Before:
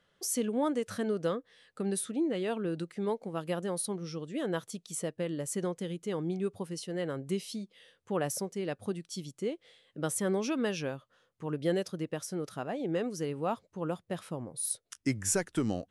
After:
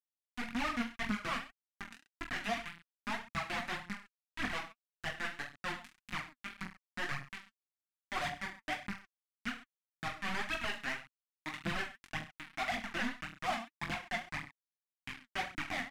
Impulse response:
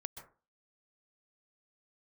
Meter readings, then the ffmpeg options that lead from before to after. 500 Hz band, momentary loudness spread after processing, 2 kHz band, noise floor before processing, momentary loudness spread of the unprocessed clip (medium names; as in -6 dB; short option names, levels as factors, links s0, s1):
-15.0 dB, 12 LU, +7.0 dB, -74 dBFS, 8 LU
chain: -filter_complex "[0:a]asplit=3[s0][s1][s2];[s0]bandpass=f=730:t=q:w=8,volume=1[s3];[s1]bandpass=f=1090:t=q:w=8,volume=0.501[s4];[s2]bandpass=f=2440:t=q:w=8,volume=0.355[s5];[s3][s4][s5]amix=inputs=3:normalize=0,acrusher=bits=6:mix=0:aa=0.000001,equalizer=f=125:t=o:w=1:g=3,equalizer=f=250:t=o:w=1:g=11,equalizer=f=500:t=o:w=1:g=-9,equalizer=f=2000:t=o:w=1:g=6,acrossover=split=3300[s6][s7];[s7]acompressor=threshold=0.00126:ratio=4:attack=1:release=60[s8];[s6][s8]amix=inputs=2:normalize=0,lowpass=9900,asplit=2[s9][s10];[s10]aecho=0:1:20|43|69.45|99.87|134.8:0.631|0.398|0.251|0.158|0.1[s11];[s9][s11]amix=inputs=2:normalize=0,asoftclip=type=tanh:threshold=0.0168,equalizer=f=440:w=1.1:g=-12,aphaser=in_gain=1:out_gain=1:delay=4.6:decay=0.56:speed=1.8:type=triangular,volume=2.82"